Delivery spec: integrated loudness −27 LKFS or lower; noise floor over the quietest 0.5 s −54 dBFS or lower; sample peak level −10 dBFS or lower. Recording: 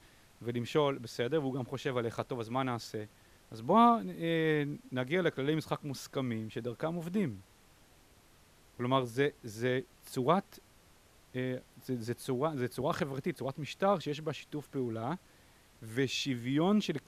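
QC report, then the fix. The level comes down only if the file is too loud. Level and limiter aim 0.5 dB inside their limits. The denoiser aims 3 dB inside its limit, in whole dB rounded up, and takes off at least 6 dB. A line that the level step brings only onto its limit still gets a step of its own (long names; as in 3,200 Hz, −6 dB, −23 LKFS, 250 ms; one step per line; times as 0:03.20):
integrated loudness −34.0 LKFS: in spec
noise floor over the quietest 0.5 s −62 dBFS: in spec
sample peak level −13.0 dBFS: in spec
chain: no processing needed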